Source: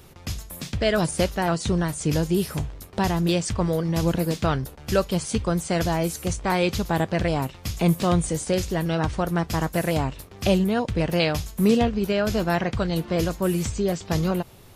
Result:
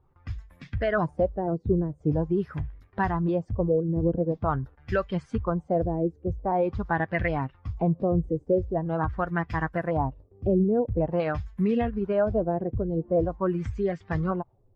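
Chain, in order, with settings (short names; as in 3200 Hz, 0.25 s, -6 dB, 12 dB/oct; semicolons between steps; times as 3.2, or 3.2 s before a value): per-bin expansion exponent 1.5; limiter -16.5 dBFS, peak gain reduction 6.5 dB; LFO low-pass sine 0.45 Hz 410–2000 Hz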